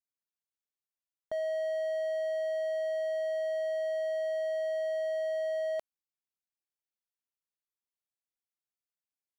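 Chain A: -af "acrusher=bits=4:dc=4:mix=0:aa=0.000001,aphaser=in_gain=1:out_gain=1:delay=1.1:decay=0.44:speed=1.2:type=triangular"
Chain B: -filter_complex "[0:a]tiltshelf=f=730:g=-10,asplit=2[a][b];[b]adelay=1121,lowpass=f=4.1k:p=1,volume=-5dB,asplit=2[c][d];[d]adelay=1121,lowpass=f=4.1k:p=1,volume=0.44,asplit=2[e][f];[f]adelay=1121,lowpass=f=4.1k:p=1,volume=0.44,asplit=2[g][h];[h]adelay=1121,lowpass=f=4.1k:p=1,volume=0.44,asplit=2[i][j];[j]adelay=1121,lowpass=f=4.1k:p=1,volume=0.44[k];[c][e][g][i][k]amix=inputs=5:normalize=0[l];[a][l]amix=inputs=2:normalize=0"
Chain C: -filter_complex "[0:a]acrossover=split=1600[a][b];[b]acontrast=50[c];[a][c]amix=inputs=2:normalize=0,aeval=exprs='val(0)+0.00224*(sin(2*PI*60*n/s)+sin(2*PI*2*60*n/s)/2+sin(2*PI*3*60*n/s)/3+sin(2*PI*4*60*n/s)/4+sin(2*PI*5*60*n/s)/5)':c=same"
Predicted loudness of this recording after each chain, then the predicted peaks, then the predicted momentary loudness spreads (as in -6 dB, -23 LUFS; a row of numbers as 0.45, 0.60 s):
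-37.0, -32.0, -32.5 LUFS; -21.5, -18.5, -24.0 dBFS; 3, 19, 1 LU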